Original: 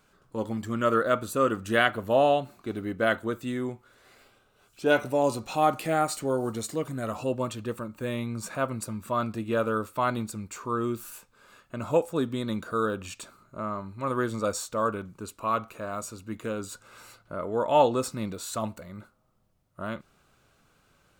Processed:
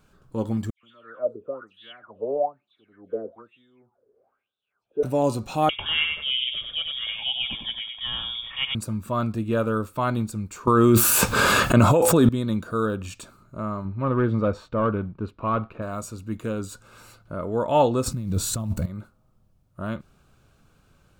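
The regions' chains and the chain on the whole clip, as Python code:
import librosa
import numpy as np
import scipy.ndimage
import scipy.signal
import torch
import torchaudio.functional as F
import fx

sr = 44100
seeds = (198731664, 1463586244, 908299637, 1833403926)

y = fx.chain(x, sr, fx.tilt_shelf(db=9.0, hz=1100.0),
    fx.dispersion(late='lows', ms=131.0, hz=2300.0),
    fx.wah_lfo(hz=1.1, low_hz=410.0, high_hz=3600.0, q=11.0), at=(0.7, 5.03))
y = fx.chain(y, sr, fx.echo_feedback(ms=95, feedback_pct=25, wet_db=-5.0),
    fx.freq_invert(carrier_hz=3500), at=(5.69, 8.75))
y = fx.chain(y, sr, fx.highpass(hz=50.0, slope=12),
    fx.low_shelf(hz=290.0, db=-5.0),
    fx.env_flatten(amount_pct=100), at=(10.67, 12.29))
y = fx.chain(y, sr, fx.leveller(passes=1),
    fx.air_absorb(metres=370.0), at=(13.85, 15.82))
y = fx.chain(y, sr, fx.bass_treble(bass_db=13, treble_db=5),
    fx.over_compress(threshold_db=-32.0, ratio=-1.0),
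    fx.quant_float(bits=4), at=(18.06, 18.86))
y = fx.low_shelf(y, sr, hz=240.0, db=10.5)
y = fx.notch(y, sr, hz=2000.0, q=13.0)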